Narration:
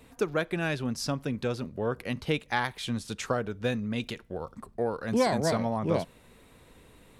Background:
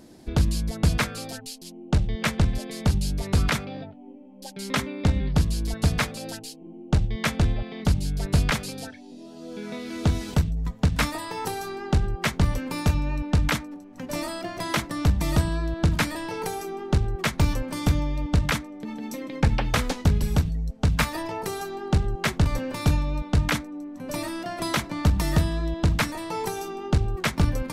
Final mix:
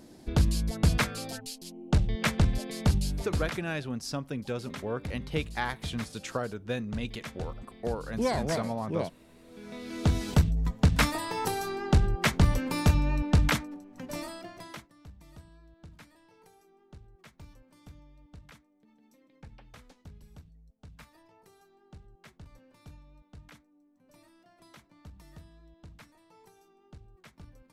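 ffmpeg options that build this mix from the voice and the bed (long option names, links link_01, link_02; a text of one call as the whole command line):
ffmpeg -i stem1.wav -i stem2.wav -filter_complex "[0:a]adelay=3050,volume=-3.5dB[link_01];[1:a]volume=13.5dB,afade=type=out:start_time=2.93:duration=0.68:silence=0.199526,afade=type=in:start_time=9.46:duration=0.87:silence=0.158489,afade=type=out:start_time=13.27:duration=1.63:silence=0.0375837[link_02];[link_01][link_02]amix=inputs=2:normalize=0" out.wav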